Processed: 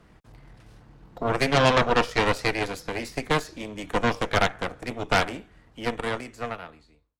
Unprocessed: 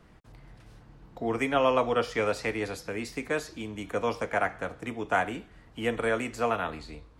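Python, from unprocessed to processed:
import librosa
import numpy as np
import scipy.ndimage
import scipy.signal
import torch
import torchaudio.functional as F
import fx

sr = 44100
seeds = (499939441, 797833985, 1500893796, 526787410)

y = fx.fade_out_tail(x, sr, length_s=2.16)
y = fx.cheby_harmonics(y, sr, harmonics=(6,), levels_db=(-8,), full_scale_db=-11.5)
y = F.gain(torch.from_numpy(y), 1.5).numpy()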